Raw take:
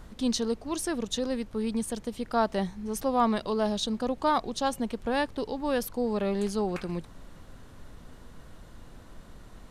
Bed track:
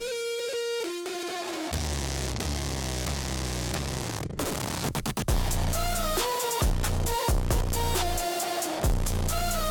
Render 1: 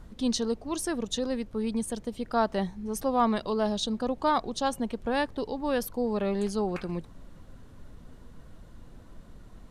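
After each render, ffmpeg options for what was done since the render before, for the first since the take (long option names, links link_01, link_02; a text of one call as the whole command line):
ffmpeg -i in.wav -af "afftdn=noise_reduction=6:noise_floor=-50" out.wav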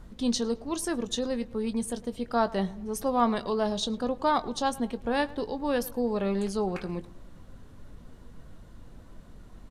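ffmpeg -i in.wav -filter_complex "[0:a]asplit=2[link_01][link_02];[link_02]adelay=21,volume=-12.5dB[link_03];[link_01][link_03]amix=inputs=2:normalize=0,asplit=2[link_04][link_05];[link_05]adelay=107,lowpass=frequency=2800:poles=1,volume=-20dB,asplit=2[link_06][link_07];[link_07]adelay=107,lowpass=frequency=2800:poles=1,volume=0.49,asplit=2[link_08][link_09];[link_09]adelay=107,lowpass=frequency=2800:poles=1,volume=0.49,asplit=2[link_10][link_11];[link_11]adelay=107,lowpass=frequency=2800:poles=1,volume=0.49[link_12];[link_04][link_06][link_08][link_10][link_12]amix=inputs=5:normalize=0" out.wav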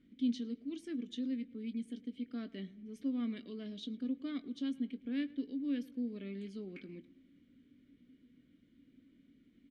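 ffmpeg -i in.wav -filter_complex "[0:a]asplit=3[link_01][link_02][link_03];[link_01]bandpass=frequency=270:width_type=q:width=8,volume=0dB[link_04];[link_02]bandpass=frequency=2290:width_type=q:width=8,volume=-6dB[link_05];[link_03]bandpass=frequency=3010:width_type=q:width=8,volume=-9dB[link_06];[link_04][link_05][link_06]amix=inputs=3:normalize=0" out.wav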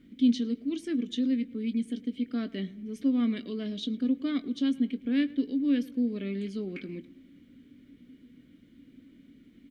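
ffmpeg -i in.wav -af "volume=10dB" out.wav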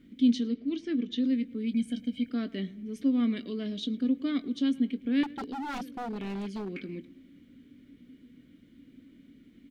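ffmpeg -i in.wav -filter_complex "[0:a]asettb=1/sr,asplit=3[link_01][link_02][link_03];[link_01]atrim=end=0.484[link_04];[link_02]atrim=start=0.48:end=1.24,asetpts=PTS-STARTPTS,afade=type=in:duration=0.004:curve=qsin,afade=type=out:start_time=0.756:duration=0.004:curve=qsin,lowpass=frequency=5300:width=0.5412,lowpass=frequency=5300:width=1.3066[link_05];[link_03]atrim=start=1.236[link_06];[link_04][link_05]acrossfade=duration=0.004:curve1=hsin:curve2=qsin[link_07];[link_07][link_06]acrossfade=duration=0.004:curve1=qsin:curve2=hsin,asettb=1/sr,asplit=3[link_08][link_09][link_10];[link_08]atrim=end=1.744[link_11];[link_09]atrim=start=1.74:end=2.3,asetpts=PTS-STARTPTS,afade=type=in:duration=0.004:curve=qsin,afade=type=out:start_time=0.556:duration=0.004:curve=qsin,aecho=1:1:1.3:0.95,atrim=end_sample=24696[link_12];[link_10]atrim=start=2.296[link_13];[link_11][link_12]acrossfade=duration=0.004:curve1=hsin:curve2=qsin[link_14];[link_14][link_13]acrossfade=duration=0.004:curve1=qsin:curve2=hsin,asettb=1/sr,asplit=3[link_15][link_16][link_17];[link_15]atrim=end=5.234[link_18];[link_16]atrim=start=5.23:end=6.72,asetpts=PTS-STARTPTS,afade=type=in:duration=0.004:curve=qsin,afade=type=out:start_time=1.486:duration=0.004:curve=qsin,aeval=exprs='0.0316*(abs(mod(val(0)/0.0316+3,4)-2)-1)':channel_layout=same[link_19];[link_17]atrim=start=6.716[link_20];[link_18][link_19]acrossfade=duration=0.004:curve1=hsin:curve2=qsin[link_21];[link_21][link_20]acrossfade=duration=0.004:curve1=qsin:curve2=hsin" out.wav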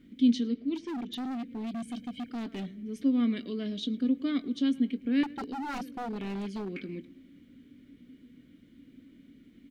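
ffmpeg -i in.wav -filter_complex "[0:a]asettb=1/sr,asplit=3[link_01][link_02][link_03];[link_01]atrim=end=0.754[link_04];[link_02]atrim=start=0.75:end=2.77,asetpts=PTS-STARTPTS,afade=type=in:duration=0.004:curve=qsin,afade=type=out:start_time=2.016:duration=0.004:curve=qsin,asoftclip=type=hard:threshold=-33dB[link_05];[link_03]atrim=start=2.766[link_06];[link_04][link_05]acrossfade=duration=0.004:curve1=hsin:curve2=qsin[link_07];[link_07][link_06]acrossfade=duration=0.004:curve1=qsin:curve2=hsin,asettb=1/sr,asplit=3[link_08][link_09][link_10];[link_08]atrim=end=4.954[link_11];[link_09]atrim=start=4.95:end=5.95,asetpts=PTS-STARTPTS,afade=type=in:duration=0.004:curve=qsin,afade=type=out:start_time=0.996:duration=0.004:curve=qsin,bandreject=frequency=3400:width=9.7[link_12];[link_10]atrim=start=5.946[link_13];[link_11][link_12]acrossfade=duration=0.004:curve1=hsin:curve2=qsin[link_14];[link_14][link_13]acrossfade=duration=0.004:curve1=qsin:curve2=hsin" out.wav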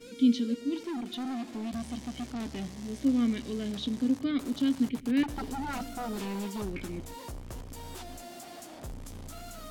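ffmpeg -i in.wav -i bed.wav -filter_complex "[1:a]volume=-16.5dB[link_01];[0:a][link_01]amix=inputs=2:normalize=0" out.wav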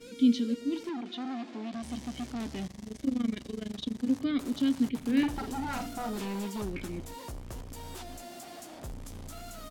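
ffmpeg -i in.wav -filter_complex "[0:a]asettb=1/sr,asplit=3[link_01][link_02][link_03];[link_01]atrim=end=0.894[link_04];[link_02]atrim=start=0.89:end=1.83,asetpts=PTS-STARTPTS,afade=type=in:duration=0.004:curve=qsin,afade=type=out:start_time=0.936:duration=0.004:curve=qsin,highpass=220,lowpass=4700[link_05];[link_03]atrim=start=1.826[link_06];[link_04][link_05]acrossfade=duration=0.004:curve1=hsin:curve2=qsin[link_07];[link_07][link_06]acrossfade=duration=0.004:curve1=qsin:curve2=hsin,asplit=3[link_08][link_09][link_10];[link_08]afade=type=out:start_time=2.66:duration=0.02[link_11];[link_09]tremolo=f=24:d=0.919,afade=type=in:start_time=2.66:duration=0.02,afade=type=out:start_time=4.06:duration=0.02[link_12];[link_10]afade=type=in:start_time=4.06:duration=0.02[link_13];[link_11][link_12][link_13]amix=inputs=3:normalize=0,asplit=3[link_14][link_15][link_16];[link_14]afade=type=out:start_time=5:duration=0.02[link_17];[link_15]asplit=2[link_18][link_19];[link_19]adelay=48,volume=-7dB[link_20];[link_18][link_20]amix=inputs=2:normalize=0,afade=type=in:start_time=5:duration=0.02,afade=type=out:start_time=6.09:duration=0.02[link_21];[link_16]afade=type=in:start_time=6.09:duration=0.02[link_22];[link_17][link_21][link_22]amix=inputs=3:normalize=0" out.wav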